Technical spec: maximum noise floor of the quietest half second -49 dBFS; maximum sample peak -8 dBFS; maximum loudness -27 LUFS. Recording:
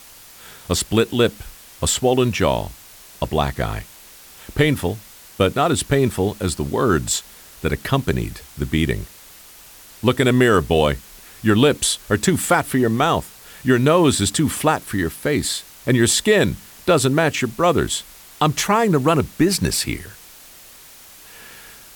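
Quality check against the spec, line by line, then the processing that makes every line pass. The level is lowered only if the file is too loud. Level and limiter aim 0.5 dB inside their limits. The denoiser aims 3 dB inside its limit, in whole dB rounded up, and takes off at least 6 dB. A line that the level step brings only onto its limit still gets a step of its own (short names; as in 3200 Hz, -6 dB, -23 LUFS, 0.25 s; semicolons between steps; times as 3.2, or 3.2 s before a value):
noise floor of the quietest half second -44 dBFS: fail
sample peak -3.5 dBFS: fail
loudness -19.0 LUFS: fail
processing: gain -8.5 dB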